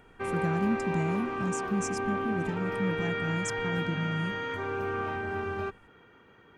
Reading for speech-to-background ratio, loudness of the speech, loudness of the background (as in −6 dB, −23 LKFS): −0.5 dB, −33.5 LKFS, −33.0 LKFS